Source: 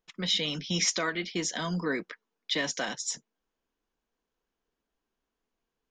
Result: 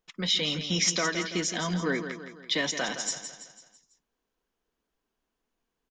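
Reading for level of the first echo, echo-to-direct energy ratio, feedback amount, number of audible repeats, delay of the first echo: -9.5 dB, -8.5 dB, 48%, 5, 166 ms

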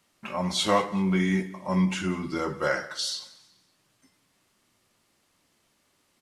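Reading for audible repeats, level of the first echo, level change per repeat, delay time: 2, -20.0 dB, -9.0 dB, 187 ms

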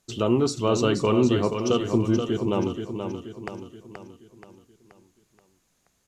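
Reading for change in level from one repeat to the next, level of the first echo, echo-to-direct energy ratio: -6.5 dB, -7.0 dB, -6.0 dB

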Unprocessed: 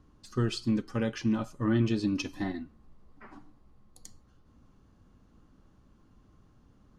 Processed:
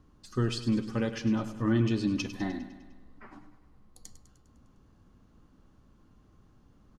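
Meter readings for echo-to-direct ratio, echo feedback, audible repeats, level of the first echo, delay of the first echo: -10.5 dB, 60%, 6, -12.5 dB, 101 ms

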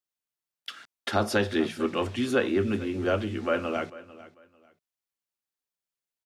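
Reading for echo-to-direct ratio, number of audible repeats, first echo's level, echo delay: -18.0 dB, 2, -18.0 dB, 445 ms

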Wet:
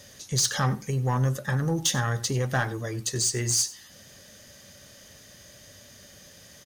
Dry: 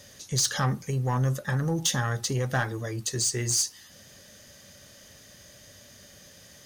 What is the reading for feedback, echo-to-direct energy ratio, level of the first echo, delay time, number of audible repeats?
no regular repeats, -18.5 dB, -18.5 dB, 94 ms, 1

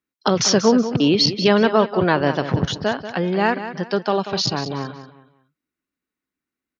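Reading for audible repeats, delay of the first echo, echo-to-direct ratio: 3, 187 ms, -11.0 dB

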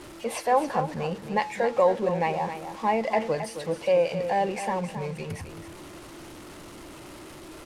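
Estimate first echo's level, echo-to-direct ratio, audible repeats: -10.0 dB, -10.0 dB, 2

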